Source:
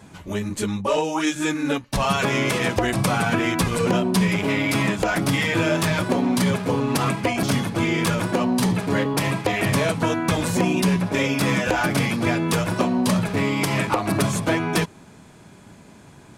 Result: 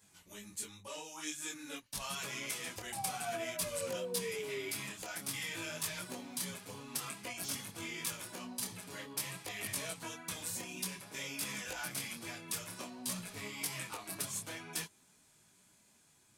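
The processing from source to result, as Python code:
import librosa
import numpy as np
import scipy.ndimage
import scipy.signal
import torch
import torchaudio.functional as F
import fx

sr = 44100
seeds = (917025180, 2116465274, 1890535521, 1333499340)

y = fx.spec_paint(x, sr, seeds[0], shape='fall', start_s=2.92, length_s=1.77, low_hz=380.0, high_hz=820.0, level_db=-17.0)
y = scipy.signal.lfilter([1.0, -0.9], [1.0], y)
y = fx.detune_double(y, sr, cents=18)
y = F.gain(torch.from_numpy(y), -4.0).numpy()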